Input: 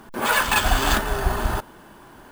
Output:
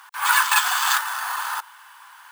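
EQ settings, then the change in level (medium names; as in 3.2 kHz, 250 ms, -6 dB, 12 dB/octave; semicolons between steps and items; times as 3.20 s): steep high-pass 910 Hz 48 dB/octave; dynamic bell 2.6 kHz, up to -5 dB, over -37 dBFS, Q 1.2; +4.5 dB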